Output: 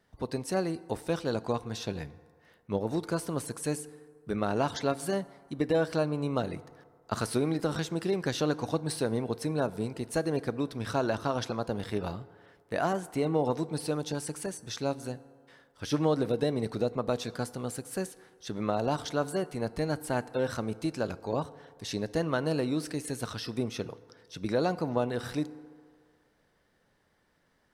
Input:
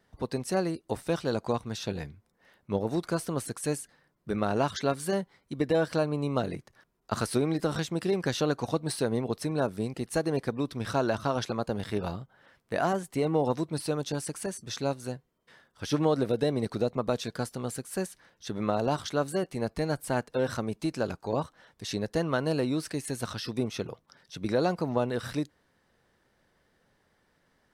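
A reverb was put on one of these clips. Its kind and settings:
feedback delay network reverb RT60 2 s, low-frequency decay 0.7×, high-frequency decay 0.45×, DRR 16 dB
level −1.5 dB

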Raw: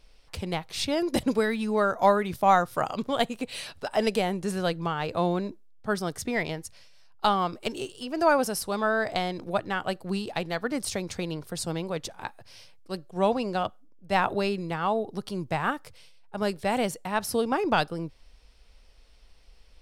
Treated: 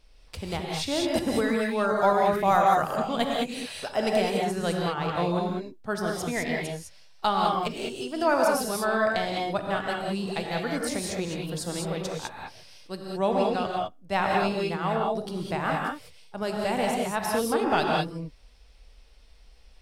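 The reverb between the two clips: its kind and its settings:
reverb whose tail is shaped and stops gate 230 ms rising, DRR −1 dB
level −2.5 dB

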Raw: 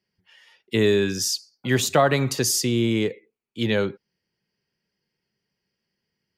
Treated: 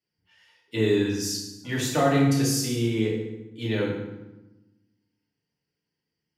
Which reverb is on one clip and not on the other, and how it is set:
feedback delay network reverb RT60 1 s, low-frequency decay 1.5×, high-frequency decay 0.75×, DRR −5.5 dB
level −11 dB

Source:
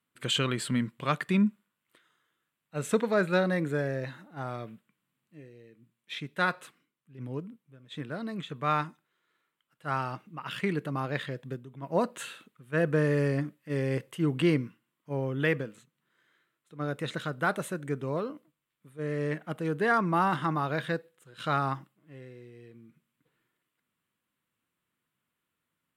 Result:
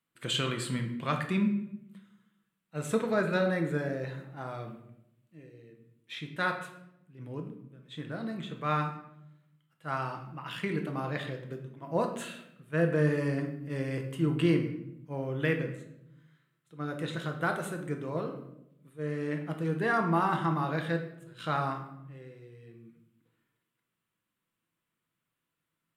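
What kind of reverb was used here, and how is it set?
rectangular room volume 220 cubic metres, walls mixed, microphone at 0.69 metres
level −3.5 dB

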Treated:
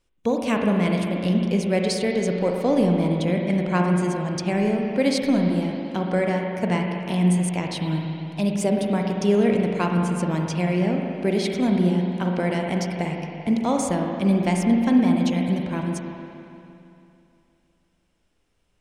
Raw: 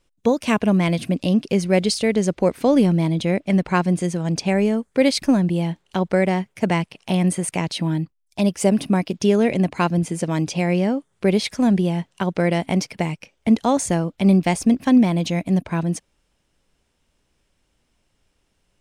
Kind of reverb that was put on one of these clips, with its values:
spring reverb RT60 2.8 s, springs 39/56 ms, chirp 65 ms, DRR 1 dB
level −5 dB

